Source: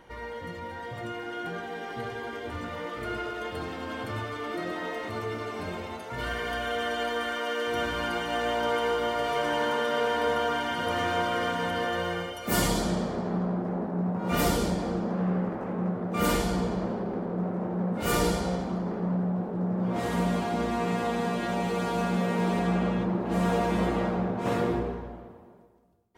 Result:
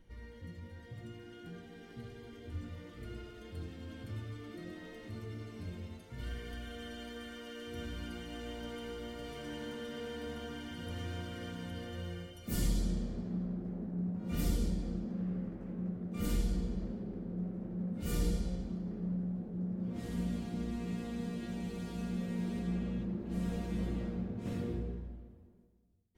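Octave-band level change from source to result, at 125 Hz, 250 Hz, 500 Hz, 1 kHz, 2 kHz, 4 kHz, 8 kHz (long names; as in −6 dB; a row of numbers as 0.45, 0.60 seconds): −6.5, −8.0, −16.5, −23.5, −18.5, −14.0, −12.0 decibels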